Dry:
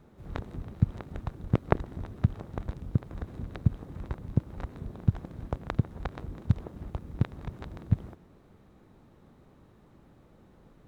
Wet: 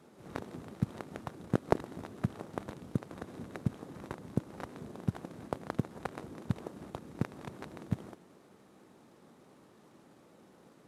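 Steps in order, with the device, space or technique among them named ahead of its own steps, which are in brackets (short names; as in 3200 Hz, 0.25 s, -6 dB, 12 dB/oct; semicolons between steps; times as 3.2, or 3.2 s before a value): early wireless headset (HPF 220 Hz 12 dB/oct; CVSD 64 kbps); gain +1.5 dB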